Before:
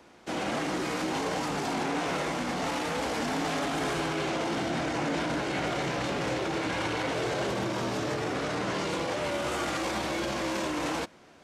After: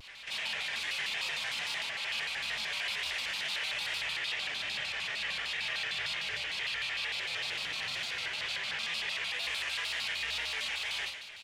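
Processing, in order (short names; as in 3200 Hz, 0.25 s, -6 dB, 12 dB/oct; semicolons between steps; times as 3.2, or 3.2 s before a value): compressor, threshold -33 dBFS, peak gain reduction 7 dB; band shelf 2800 Hz +12.5 dB 1.3 oct; notch 1500 Hz, Q 22; feedback echo 74 ms, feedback 57%, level -15 dB; limiter -29 dBFS, peak gain reduction 10 dB; Schroeder reverb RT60 0.32 s, combs from 32 ms, DRR -3.5 dB; wow and flutter 50 cents; passive tone stack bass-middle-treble 10-0-10; shaped vibrato square 6.6 Hz, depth 250 cents; gain +2 dB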